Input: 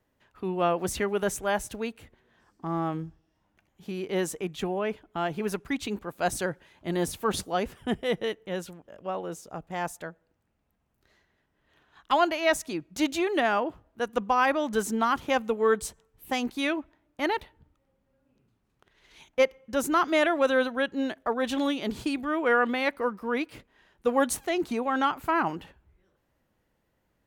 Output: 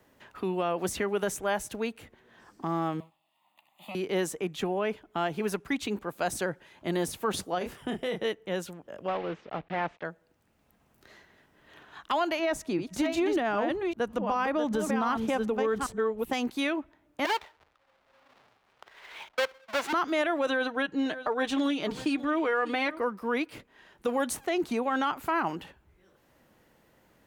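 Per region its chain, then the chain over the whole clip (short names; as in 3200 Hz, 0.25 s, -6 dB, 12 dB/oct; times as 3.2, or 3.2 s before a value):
3–3.95 minimum comb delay 1.1 ms + HPF 410 Hz + fixed phaser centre 1600 Hz, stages 6
7.58–8.25 doubler 28 ms -5 dB + compressor 4:1, threshold -29 dBFS
9.08–10.05 block floating point 3-bit + LPF 2800 Hz 24 dB/oct
12.39–16.33 reverse delay 0.386 s, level -7 dB + tilt -2 dB/oct
17.25–19.93 half-waves squared off + three-band isolator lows -20 dB, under 550 Hz, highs -15 dB, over 4800 Hz
20.46–22.99 bell 14000 Hz -10.5 dB 0.67 oct + comb 6.5 ms, depth 54% + echo 0.596 s -18.5 dB
whole clip: low shelf 96 Hz -8 dB; limiter -19 dBFS; three-band squash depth 40%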